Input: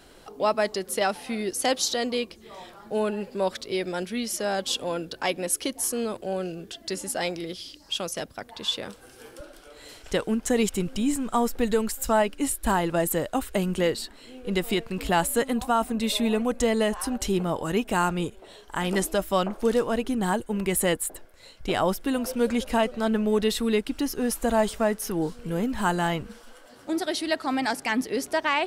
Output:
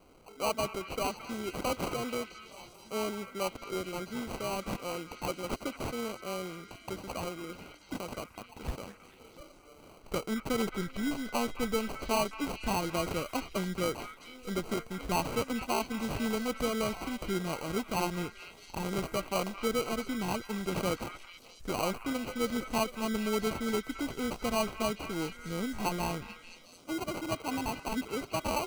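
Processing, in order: sample-and-hold 25×; delay with a stepping band-pass 0.219 s, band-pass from 1700 Hz, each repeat 0.7 oct, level -6 dB; gain -8 dB

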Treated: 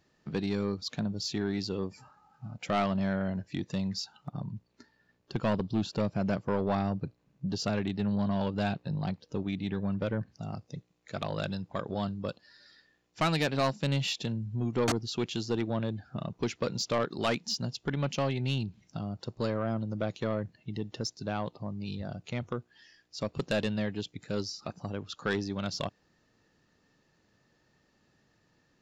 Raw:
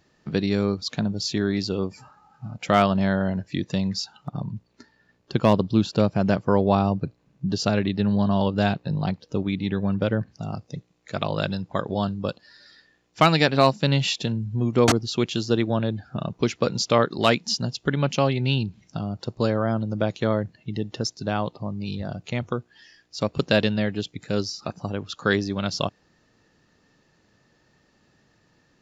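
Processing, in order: soft clip -14.5 dBFS, distortion -12 dB; gain -6.5 dB

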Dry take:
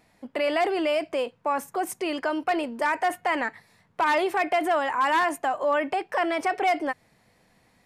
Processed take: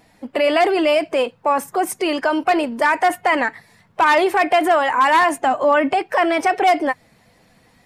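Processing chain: bin magnitudes rounded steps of 15 dB; 5.35–5.99 thirty-one-band EQ 125 Hz +7 dB, 250 Hz +7 dB, 12500 Hz -11 dB; gain +8.5 dB

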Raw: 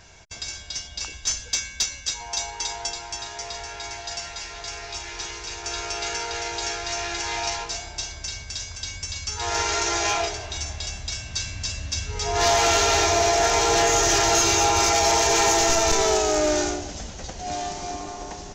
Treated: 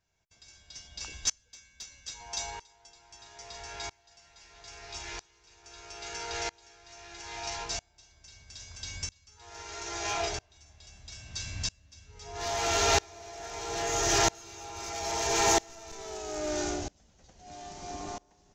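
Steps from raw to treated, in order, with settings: bell 150 Hz +3 dB 1.8 oct; dB-ramp tremolo swelling 0.77 Hz, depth 30 dB; gain -2.5 dB

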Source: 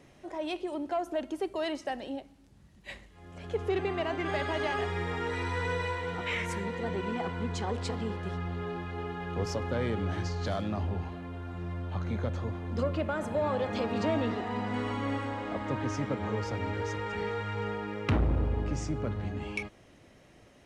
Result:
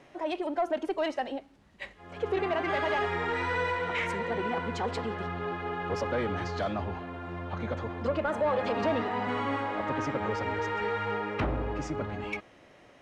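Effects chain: time stretch by phase-locked vocoder 0.63×; overdrive pedal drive 14 dB, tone 1900 Hz, clips at -17 dBFS

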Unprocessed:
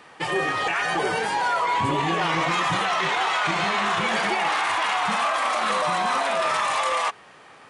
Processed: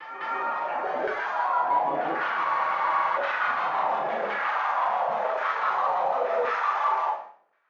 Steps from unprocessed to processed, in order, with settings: trilling pitch shifter -5 st, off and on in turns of 85 ms; Chebyshev band-pass 130–6500 Hz, order 5; gate -38 dBFS, range -58 dB; reverse; upward compressor, threshold -35 dBFS; reverse; LFO band-pass saw down 0.93 Hz 510–1700 Hz; on a send: reverse echo 0.203 s -8 dB; on the sum: Schroeder reverb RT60 0.46 s, combs from 27 ms, DRR 1.5 dB; spectral freeze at 2.47, 0.70 s

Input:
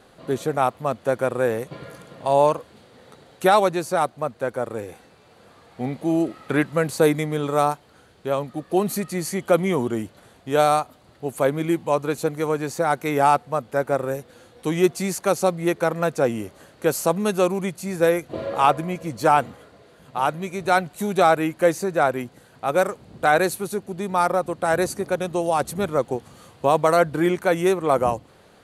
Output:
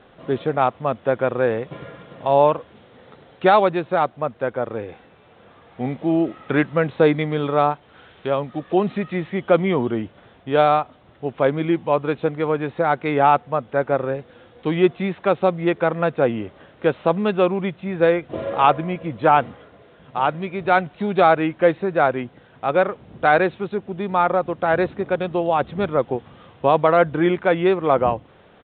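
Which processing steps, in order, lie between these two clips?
downsampling 8000 Hz; 7.21–9.27 mismatched tape noise reduction encoder only; gain +2 dB

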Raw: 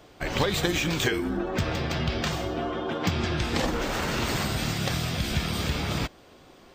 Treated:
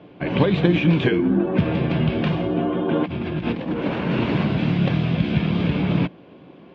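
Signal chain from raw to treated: 2.88–4.11 negative-ratio compressor -30 dBFS, ratio -0.5; speaker cabinet 120–2700 Hz, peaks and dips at 130 Hz +4 dB, 180 Hz +9 dB, 290 Hz +5 dB, 780 Hz -5 dB, 1300 Hz -9 dB, 1900 Hz -8 dB; gain +6.5 dB

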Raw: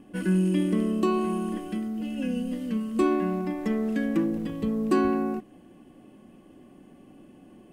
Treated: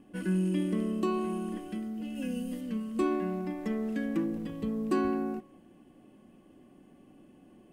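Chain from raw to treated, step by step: 2.15–2.61 high shelf 7200 Hz +11 dB; on a send: reverb RT60 0.45 s, pre-delay 0.105 s, DRR 21.5 dB; on the sum: gain -5.5 dB

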